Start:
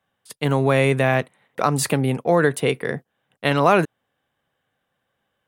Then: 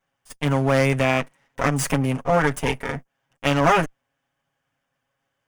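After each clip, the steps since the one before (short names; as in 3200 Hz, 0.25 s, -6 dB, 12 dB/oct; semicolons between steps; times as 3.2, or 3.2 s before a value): minimum comb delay 7.3 ms; thirty-one-band EQ 400 Hz -6 dB, 4000 Hz -10 dB, 6300 Hz +4 dB, 12500 Hz -6 dB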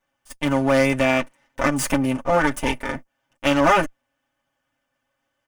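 comb 3.4 ms, depth 54%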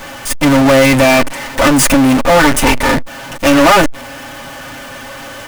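power-law curve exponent 0.35; backlash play -33.5 dBFS; gain +2 dB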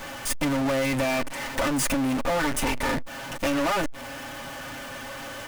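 compressor 5:1, threshold -16 dBFS, peak gain reduction 9.5 dB; gain -8 dB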